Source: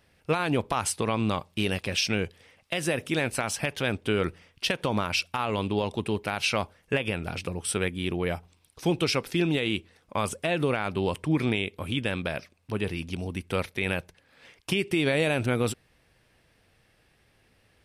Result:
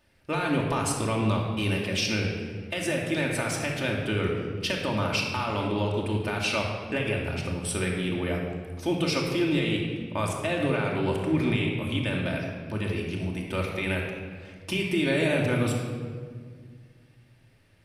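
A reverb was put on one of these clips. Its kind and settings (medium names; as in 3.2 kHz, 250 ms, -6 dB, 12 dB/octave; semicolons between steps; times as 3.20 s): simulated room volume 2500 m³, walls mixed, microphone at 2.6 m; trim -4 dB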